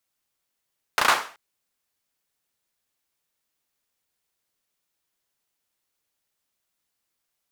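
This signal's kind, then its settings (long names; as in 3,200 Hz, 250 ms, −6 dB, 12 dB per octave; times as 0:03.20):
synth clap length 0.38 s, bursts 4, apart 34 ms, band 1,100 Hz, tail 0.41 s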